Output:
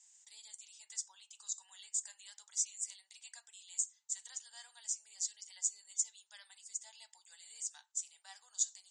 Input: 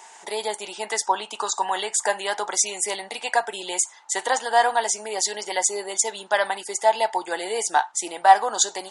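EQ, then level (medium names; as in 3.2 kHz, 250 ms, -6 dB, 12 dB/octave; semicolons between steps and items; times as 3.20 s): band-pass filter 7.6 kHz, Q 4.1; distance through air 160 m; differentiator; +5.0 dB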